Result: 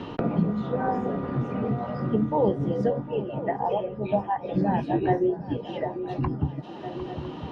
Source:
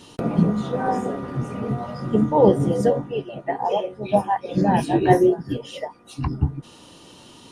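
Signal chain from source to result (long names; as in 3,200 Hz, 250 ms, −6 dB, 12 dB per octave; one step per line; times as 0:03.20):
high-frequency loss of the air 250 metres
feedback echo with a long and a short gap by turns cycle 1,003 ms, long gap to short 3 to 1, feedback 42%, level −19.5 dB
multiband upward and downward compressor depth 70%
level −4.5 dB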